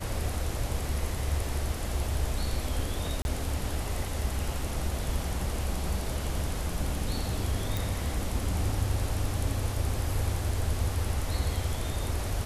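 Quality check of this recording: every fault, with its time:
3.22–3.25 s: dropout 31 ms
7.77 s: pop

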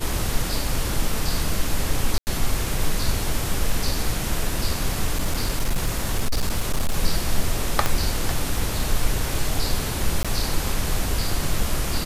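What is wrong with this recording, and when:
2.18–2.27 s: dropout 89 ms
5.11–6.98 s: clipped -16.5 dBFS
7.86 s: pop -5 dBFS
10.23–10.25 s: dropout 16 ms

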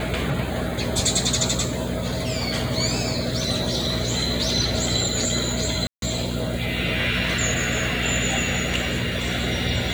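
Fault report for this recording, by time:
hum 60 Hz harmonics 4 -29 dBFS
5.87–6.02 s: dropout 152 ms

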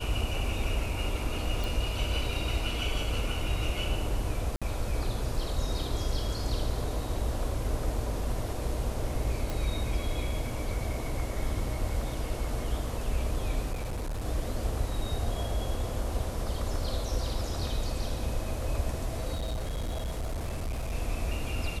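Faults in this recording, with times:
1.64 s: pop
4.56–4.62 s: dropout 56 ms
9.50 s: pop
13.72–14.25 s: clipped -30 dBFS
19.34–20.95 s: clipped -29 dBFS

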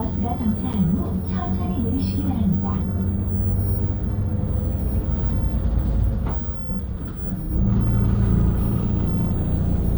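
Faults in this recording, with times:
0.73–0.74 s: dropout 7.5 ms

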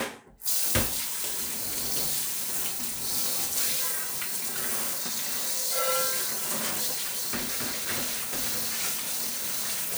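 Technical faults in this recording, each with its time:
6.86–8.82 s: clipped -25.5 dBFS

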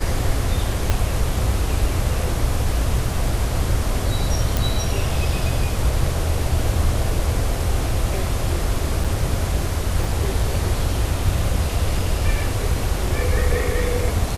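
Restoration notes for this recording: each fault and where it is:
0.90 s: pop -5 dBFS
4.57 s: pop
9.04–9.05 s: dropout 5.6 ms
10.04 s: dropout 2.8 ms

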